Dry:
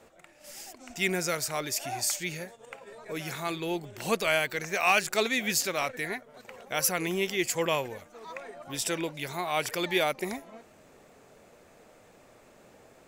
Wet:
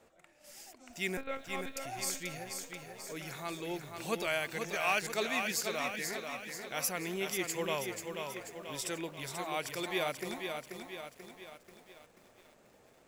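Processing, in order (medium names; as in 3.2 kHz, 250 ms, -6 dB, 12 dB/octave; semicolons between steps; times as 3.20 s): 1.17–1.77 s: monotone LPC vocoder at 8 kHz 270 Hz; bit-crushed delay 486 ms, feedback 55%, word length 9-bit, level -5.5 dB; trim -7.5 dB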